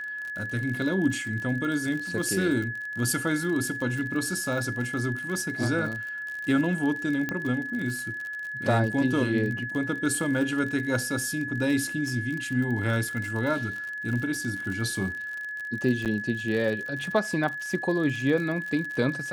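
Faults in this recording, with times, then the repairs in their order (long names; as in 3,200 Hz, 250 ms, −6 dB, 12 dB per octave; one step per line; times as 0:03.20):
surface crackle 51 per second −32 dBFS
whistle 1,700 Hz −32 dBFS
0:07.29: click −15 dBFS
0:16.05–0:16.06: drop-out 8 ms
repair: click removal
notch filter 1,700 Hz, Q 30
repair the gap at 0:16.05, 8 ms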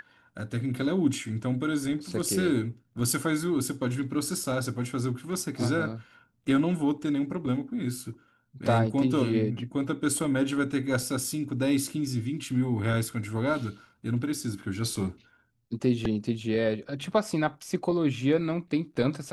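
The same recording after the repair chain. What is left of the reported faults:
none of them is left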